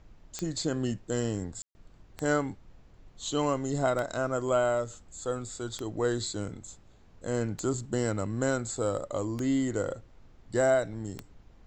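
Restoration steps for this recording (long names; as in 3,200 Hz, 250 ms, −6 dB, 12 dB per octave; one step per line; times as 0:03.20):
click removal
ambience match 0:01.62–0:01.75
noise reduction from a noise print 21 dB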